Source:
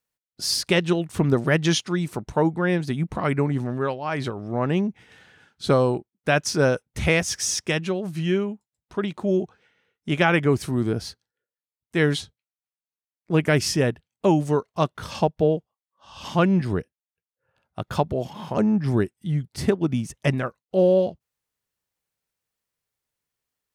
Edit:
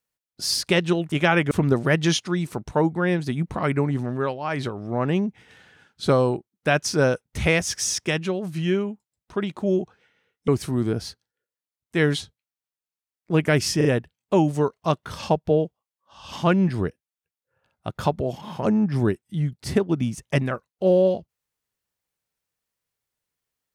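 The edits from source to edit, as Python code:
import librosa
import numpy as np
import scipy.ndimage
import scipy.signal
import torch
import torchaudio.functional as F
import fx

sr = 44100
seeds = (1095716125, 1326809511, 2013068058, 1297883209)

y = fx.edit(x, sr, fx.move(start_s=10.09, length_s=0.39, to_s=1.12),
    fx.stutter(start_s=13.77, slice_s=0.04, count=3), tone=tone)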